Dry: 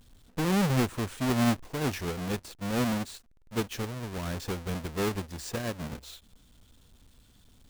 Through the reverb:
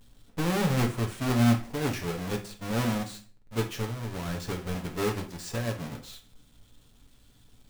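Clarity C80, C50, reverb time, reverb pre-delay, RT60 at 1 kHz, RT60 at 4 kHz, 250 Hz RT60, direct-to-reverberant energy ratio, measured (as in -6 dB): 16.5 dB, 11.5 dB, 0.40 s, 7 ms, 0.40 s, 0.35 s, 0.50 s, 2.0 dB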